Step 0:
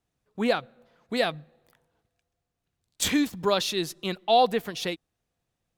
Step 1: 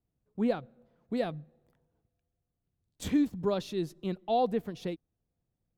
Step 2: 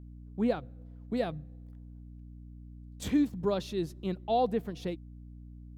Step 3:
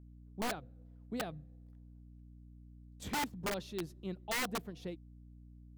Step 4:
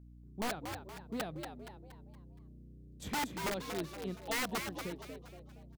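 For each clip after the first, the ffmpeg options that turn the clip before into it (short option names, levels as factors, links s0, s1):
-af "tiltshelf=f=710:g=9,volume=0.398"
-af "aeval=exprs='val(0)+0.00501*(sin(2*PI*60*n/s)+sin(2*PI*2*60*n/s)/2+sin(2*PI*3*60*n/s)/3+sin(2*PI*4*60*n/s)/4+sin(2*PI*5*60*n/s)/5)':c=same"
-af "aeval=exprs='(mod(13.3*val(0)+1,2)-1)/13.3':c=same,volume=0.422"
-filter_complex "[0:a]asplit=6[s0][s1][s2][s3][s4][s5];[s1]adelay=235,afreqshift=91,volume=0.473[s6];[s2]adelay=470,afreqshift=182,volume=0.2[s7];[s3]adelay=705,afreqshift=273,volume=0.0832[s8];[s4]adelay=940,afreqshift=364,volume=0.0351[s9];[s5]adelay=1175,afreqshift=455,volume=0.0148[s10];[s0][s6][s7][s8][s9][s10]amix=inputs=6:normalize=0"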